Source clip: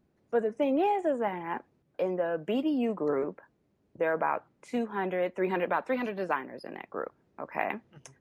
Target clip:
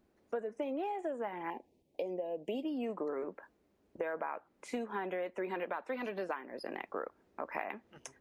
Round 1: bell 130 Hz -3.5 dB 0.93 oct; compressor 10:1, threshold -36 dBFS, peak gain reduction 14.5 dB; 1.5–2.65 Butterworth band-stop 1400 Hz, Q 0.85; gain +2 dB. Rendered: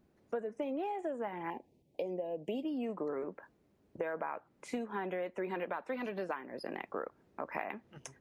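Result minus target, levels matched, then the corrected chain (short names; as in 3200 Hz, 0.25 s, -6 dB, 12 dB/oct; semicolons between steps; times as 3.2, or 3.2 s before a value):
125 Hz band +4.5 dB
bell 130 Hz -14 dB 0.93 oct; compressor 10:1, threshold -36 dBFS, peak gain reduction 13.5 dB; 1.5–2.65 Butterworth band-stop 1400 Hz, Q 0.85; gain +2 dB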